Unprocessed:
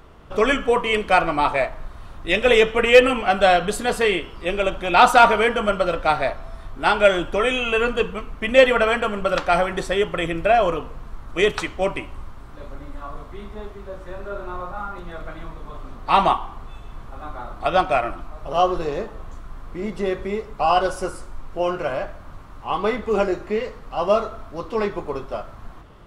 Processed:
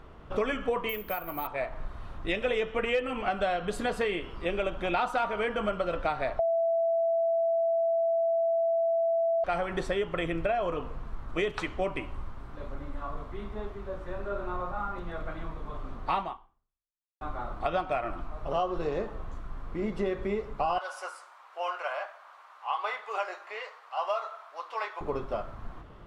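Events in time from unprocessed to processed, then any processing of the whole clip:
0.89–1.47 s: careless resampling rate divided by 3×, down none, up zero stuff
6.39–9.44 s: bleep 665 Hz -12 dBFS
16.18–17.21 s: fade out exponential
20.78–25.01 s: high-pass 740 Hz 24 dB/octave
whole clip: compression 6:1, threshold -23 dBFS; treble shelf 5.2 kHz -11.5 dB; trim -2.5 dB

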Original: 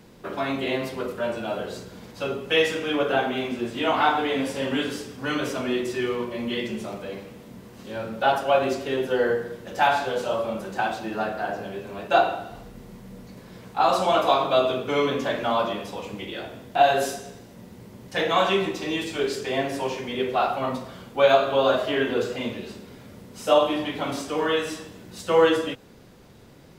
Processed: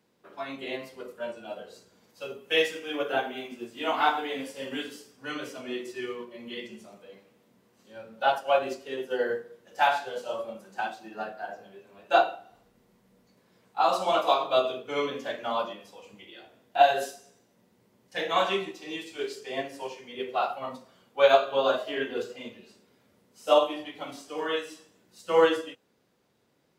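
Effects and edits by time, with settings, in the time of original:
2.09–5.11 s: treble shelf 10 kHz +5.5 dB
whole clip: spectral noise reduction 6 dB; high-pass 290 Hz 6 dB/octave; upward expansion 1.5:1, over -35 dBFS

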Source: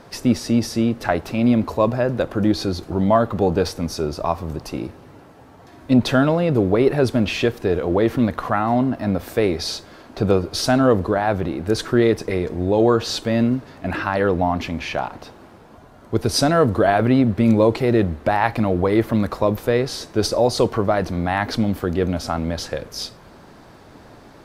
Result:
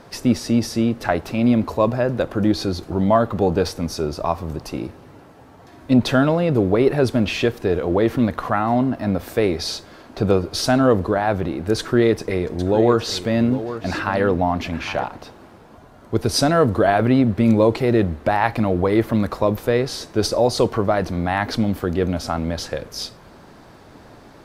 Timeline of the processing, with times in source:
11.78–15.04 s: delay 808 ms -12.5 dB

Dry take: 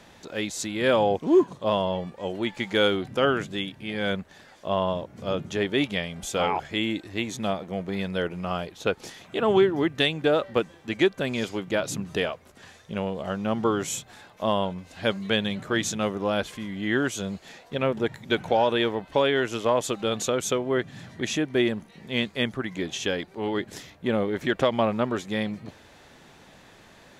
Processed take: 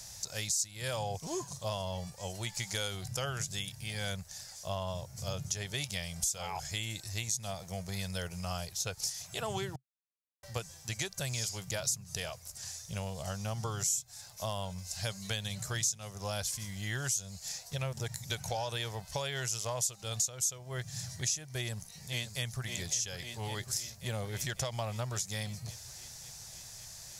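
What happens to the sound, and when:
9.76–10.43 s: mute
21.57–22.66 s: echo throw 550 ms, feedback 70%, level -9.5 dB
whole clip: FFT filter 130 Hz 0 dB, 270 Hz -27 dB, 700 Hz -10 dB, 1.2 kHz -13 dB, 3.4 kHz -7 dB, 5.2 kHz +13 dB; compression 4:1, threshold -36 dBFS; trim +3.5 dB

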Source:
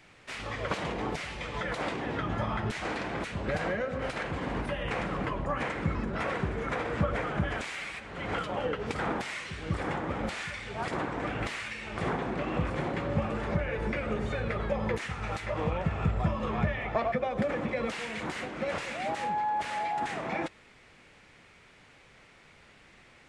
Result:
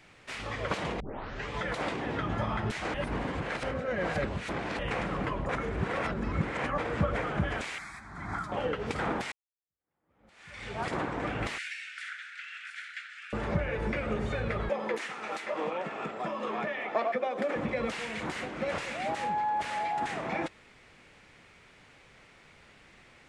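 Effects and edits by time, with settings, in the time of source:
1.00 s: tape start 0.51 s
2.94–4.79 s: reverse
5.49–6.78 s: reverse
7.78–8.52 s: static phaser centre 1.2 kHz, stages 4
9.32–10.64 s: fade in exponential
11.58–13.33 s: steep high-pass 1.4 kHz 96 dB/octave
14.69–17.56 s: high-pass 250 Hz 24 dB/octave

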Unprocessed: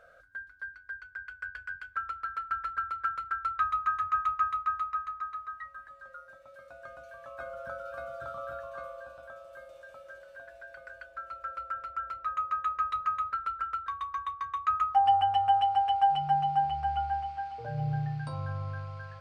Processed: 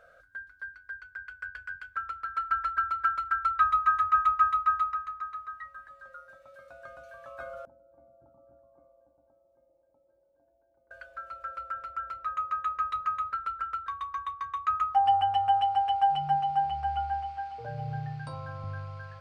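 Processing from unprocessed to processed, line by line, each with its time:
2.35–4.94 s: comb 3.1 ms, depth 89%
7.65–10.91 s: cascade formant filter u
16.35–18.64 s: hum notches 50/100/150/200/250/300/350 Hz

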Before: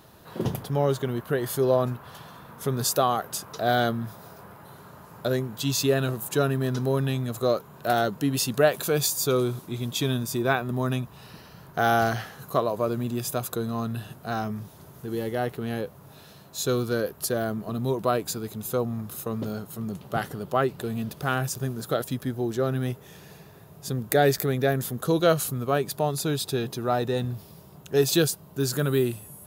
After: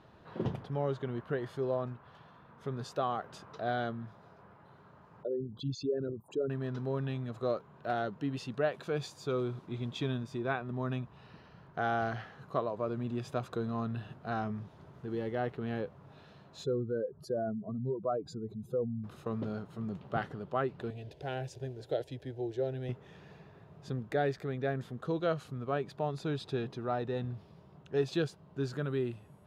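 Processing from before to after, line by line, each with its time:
5.23–6.50 s: resonances exaggerated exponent 3
16.64–19.04 s: spectral contrast enhancement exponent 2.1
20.90–22.89 s: static phaser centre 500 Hz, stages 4
whole clip: low-pass 2.9 kHz 12 dB/octave; gain riding within 3 dB 0.5 s; trim -8.5 dB

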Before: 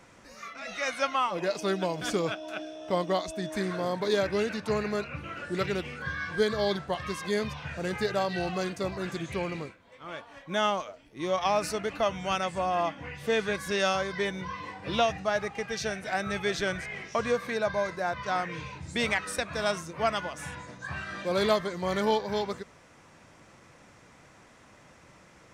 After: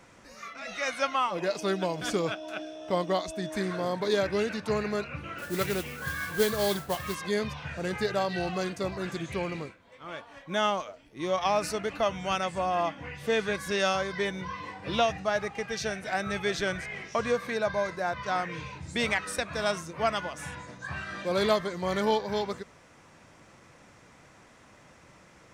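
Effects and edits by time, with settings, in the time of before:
5.38–7.15 s: modulation noise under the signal 11 dB

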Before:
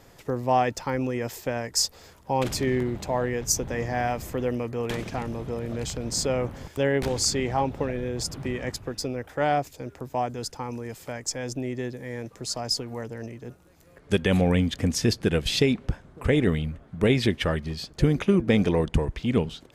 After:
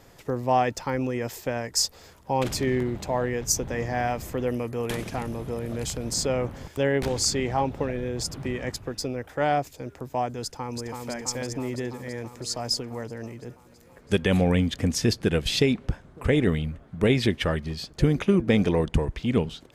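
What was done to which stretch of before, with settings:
4.47–6.14 s: peaking EQ 11 kHz +10.5 dB 0.61 oct
10.43–11.09 s: echo throw 330 ms, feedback 75%, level -4 dB

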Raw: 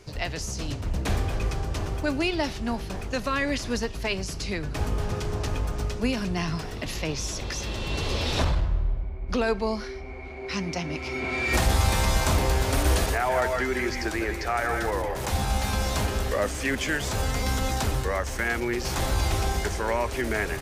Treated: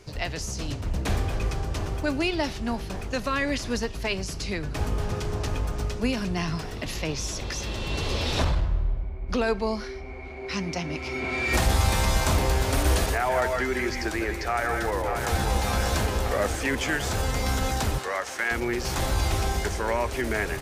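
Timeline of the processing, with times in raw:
14.45–15.38 s: echo throw 590 ms, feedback 75%, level -5.5 dB
17.98–18.51 s: frequency weighting A

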